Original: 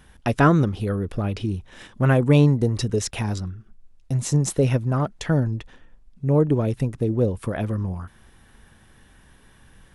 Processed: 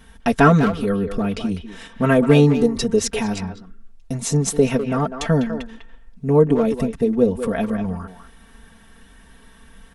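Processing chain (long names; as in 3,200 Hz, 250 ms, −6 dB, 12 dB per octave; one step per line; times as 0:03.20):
comb filter 4.4 ms, depth 98%
far-end echo of a speakerphone 200 ms, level −8 dB
level +1.5 dB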